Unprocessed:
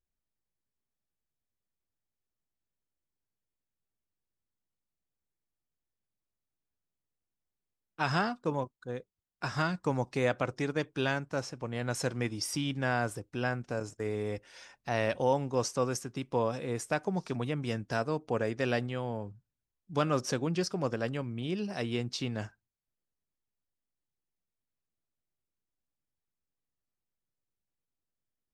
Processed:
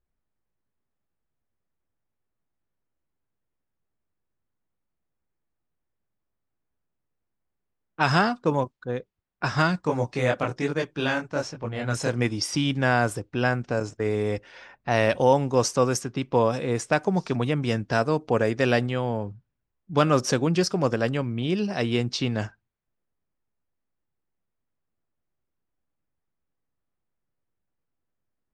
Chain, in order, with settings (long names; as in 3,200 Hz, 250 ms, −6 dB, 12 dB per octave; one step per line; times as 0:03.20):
low-pass that shuts in the quiet parts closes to 1,800 Hz, open at −27 dBFS
0:09.81–0:12.22: multi-voice chorus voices 2, 1.1 Hz, delay 22 ms, depth 3.9 ms
level +8.5 dB